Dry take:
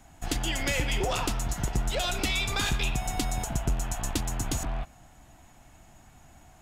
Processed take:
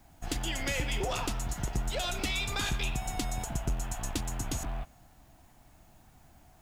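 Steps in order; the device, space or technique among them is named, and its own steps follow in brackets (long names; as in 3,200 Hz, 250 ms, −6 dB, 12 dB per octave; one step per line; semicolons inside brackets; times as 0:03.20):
plain cassette with noise reduction switched in (one half of a high-frequency compander decoder only; tape wow and flutter 22 cents; white noise bed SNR 35 dB)
level −4 dB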